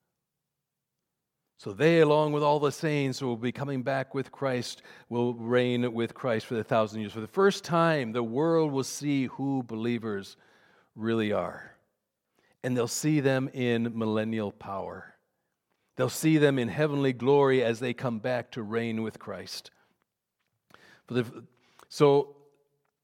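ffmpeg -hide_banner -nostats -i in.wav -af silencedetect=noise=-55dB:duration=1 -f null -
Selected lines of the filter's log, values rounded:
silence_start: 0.00
silence_end: 1.59 | silence_duration: 1.59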